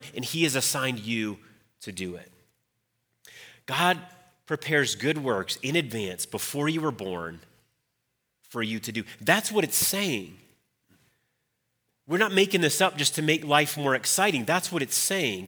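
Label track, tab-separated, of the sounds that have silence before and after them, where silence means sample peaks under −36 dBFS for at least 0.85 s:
3.250000	7.350000	sound
8.520000	10.300000	sound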